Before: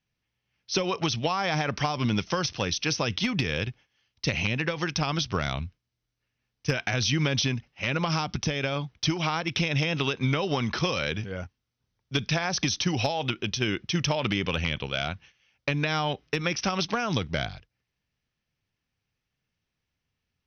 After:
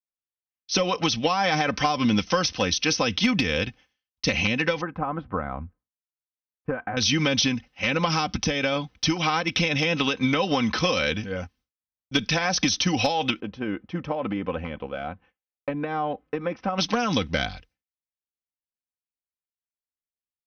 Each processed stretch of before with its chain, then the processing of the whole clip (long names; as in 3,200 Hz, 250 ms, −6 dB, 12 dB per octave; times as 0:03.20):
0:04.81–0:06.97: low-pass filter 1,300 Hz 24 dB per octave + low-shelf EQ 410 Hz −5.5 dB
0:13.40–0:16.78: low-pass filter 1,000 Hz + low-shelf EQ 210 Hz −9 dB
whole clip: downward expander −54 dBFS; comb filter 3.9 ms, depth 59%; level +3 dB